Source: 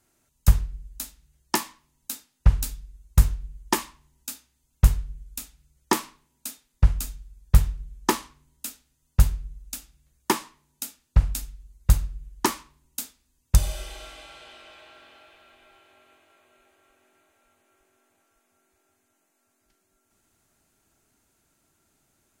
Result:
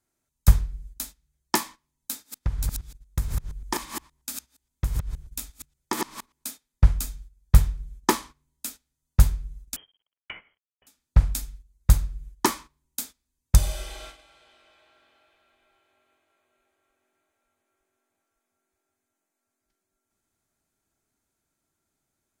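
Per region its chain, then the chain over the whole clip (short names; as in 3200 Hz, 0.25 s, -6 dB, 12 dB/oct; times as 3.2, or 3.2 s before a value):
2.11–6.5 reverse delay 0.117 s, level -3.5 dB + compressor 2.5:1, threshold -26 dBFS
9.76–10.87 compressor 2:1, threshold -43 dBFS + sample gate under -57.5 dBFS + inverted band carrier 3200 Hz
whole clip: gate -42 dBFS, range -12 dB; notch 2800 Hz, Q 12; gain +1 dB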